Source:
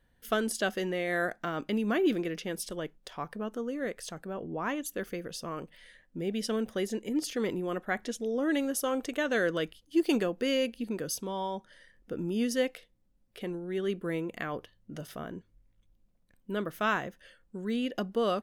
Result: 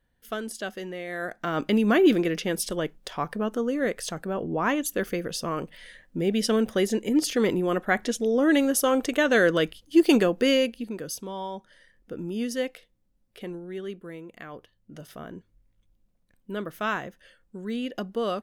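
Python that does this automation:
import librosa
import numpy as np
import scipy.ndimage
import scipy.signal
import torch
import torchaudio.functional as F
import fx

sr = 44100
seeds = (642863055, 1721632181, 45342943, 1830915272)

y = fx.gain(x, sr, db=fx.line((1.18, -3.5), (1.59, 8.0), (10.49, 8.0), (10.91, 0.0), (13.58, 0.0), (14.17, -8.0), (15.34, 0.5)))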